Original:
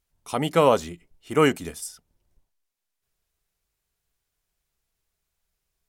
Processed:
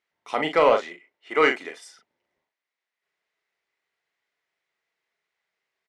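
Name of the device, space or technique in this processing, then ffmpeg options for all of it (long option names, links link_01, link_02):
intercom: -filter_complex "[0:a]asettb=1/sr,asplit=3[link_01][link_02][link_03];[link_01]atrim=end=0.734[link_04];[link_02]atrim=start=0.73:end=1.8,asetpts=PTS-STARTPTS,afade=type=in:duration=0.004:curve=qsin,afade=type=out:start_time=1.066:duration=0.004:curve=qsin,bass=frequency=250:gain=-11,treble=frequency=4000:gain=-2[link_05];[link_03]atrim=start=1.796[link_06];[link_04][link_05]acrossfade=duration=0.004:curve1=hsin:curve2=qsin[link_07];[link_07][link_06]acrossfade=duration=0.004:curve1=qsin:curve2=hsin,highpass=380,lowpass=3500,equalizer=frequency=2000:width_type=o:width=0.3:gain=10,asoftclip=type=tanh:threshold=-9.5dB,asplit=2[link_08][link_09];[link_09]adelay=39,volume=-6.5dB[link_10];[link_08][link_10]amix=inputs=2:normalize=0,volume=2dB"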